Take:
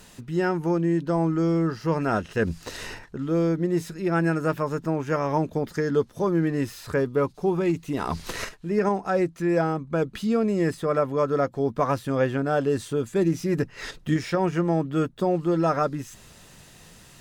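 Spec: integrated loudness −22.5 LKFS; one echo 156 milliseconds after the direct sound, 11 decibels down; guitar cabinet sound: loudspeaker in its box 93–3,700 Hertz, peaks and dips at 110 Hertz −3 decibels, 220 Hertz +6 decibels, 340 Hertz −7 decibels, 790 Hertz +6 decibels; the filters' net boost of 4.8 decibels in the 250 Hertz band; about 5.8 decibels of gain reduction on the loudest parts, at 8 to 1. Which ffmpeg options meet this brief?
ffmpeg -i in.wav -af "equalizer=frequency=250:width_type=o:gain=8,acompressor=threshold=-20dB:ratio=8,highpass=93,equalizer=frequency=110:width_type=q:width=4:gain=-3,equalizer=frequency=220:width_type=q:width=4:gain=6,equalizer=frequency=340:width_type=q:width=4:gain=-7,equalizer=frequency=790:width_type=q:width=4:gain=6,lowpass=frequency=3700:width=0.5412,lowpass=frequency=3700:width=1.3066,aecho=1:1:156:0.282,volume=4dB" out.wav

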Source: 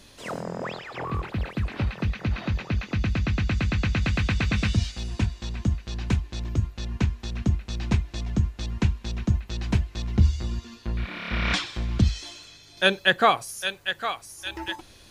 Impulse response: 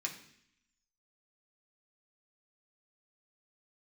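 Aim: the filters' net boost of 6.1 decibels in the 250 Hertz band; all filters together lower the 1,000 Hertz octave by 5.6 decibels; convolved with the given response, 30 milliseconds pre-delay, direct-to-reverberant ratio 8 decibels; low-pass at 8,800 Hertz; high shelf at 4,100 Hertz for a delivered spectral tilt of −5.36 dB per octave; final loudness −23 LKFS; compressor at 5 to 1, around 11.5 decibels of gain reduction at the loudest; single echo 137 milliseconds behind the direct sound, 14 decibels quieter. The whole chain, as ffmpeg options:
-filter_complex "[0:a]lowpass=8800,equalizer=frequency=250:width_type=o:gain=8.5,equalizer=frequency=1000:width_type=o:gain=-8,highshelf=frequency=4100:gain=-5.5,acompressor=threshold=-27dB:ratio=5,aecho=1:1:137:0.2,asplit=2[link_01][link_02];[1:a]atrim=start_sample=2205,adelay=30[link_03];[link_02][link_03]afir=irnorm=-1:irlink=0,volume=-9dB[link_04];[link_01][link_04]amix=inputs=2:normalize=0,volume=9.5dB"

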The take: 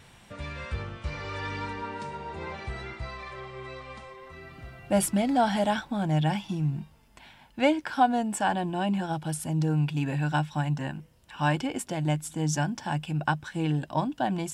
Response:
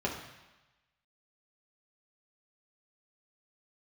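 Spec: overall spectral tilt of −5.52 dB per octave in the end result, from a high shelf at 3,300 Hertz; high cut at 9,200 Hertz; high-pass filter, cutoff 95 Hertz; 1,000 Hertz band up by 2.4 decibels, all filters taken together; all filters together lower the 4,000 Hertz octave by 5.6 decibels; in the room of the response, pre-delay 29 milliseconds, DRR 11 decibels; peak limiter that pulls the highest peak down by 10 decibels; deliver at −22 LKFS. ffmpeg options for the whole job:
-filter_complex "[0:a]highpass=95,lowpass=9200,equalizer=frequency=1000:width_type=o:gain=4,highshelf=frequency=3300:gain=-6.5,equalizer=frequency=4000:width_type=o:gain=-4,alimiter=limit=-19dB:level=0:latency=1,asplit=2[link_01][link_02];[1:a]atrim=start_sample=2205,adelay=29[link_03];[link_02][link_03]afir=irnorm=-1:irlink=0,volume=-18dB[link_04];[link_01][link_04]amix=inputs=2:normalize=0,volume=8dB"

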